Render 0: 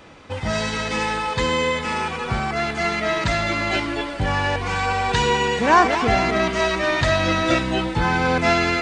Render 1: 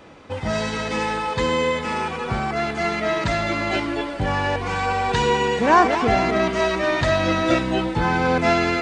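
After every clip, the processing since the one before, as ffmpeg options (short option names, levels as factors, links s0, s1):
-af "equalizer=f=390:w=0.36:g=5,volume=0.668"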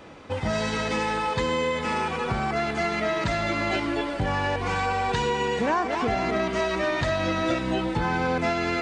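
-af "acompressor=threshold=0.0794:ratio=5"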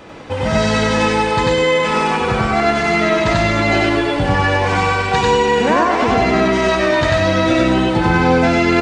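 -af "aecho=1:1:93.29|128.3|195.3:1|0.316|0.355,volume=2.24"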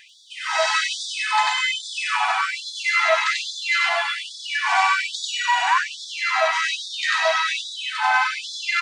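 -af "afftfilt=real='re*gte(b*sr/1024,630*pow(3400/630,0.5+0.5*sin(2*PI*1.2*pts/sr)))':imag='im*gte(b*sr/1024,630*pow(3400/630,0.5+0.5*sin(2*PI*1.2*pts/sr)))':win_size=1024:overlap=0.75"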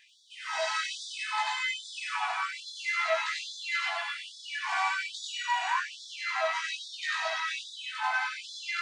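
-af "flanger=delay=19.5:depth=2.3:speed=0.59,volume=0.422"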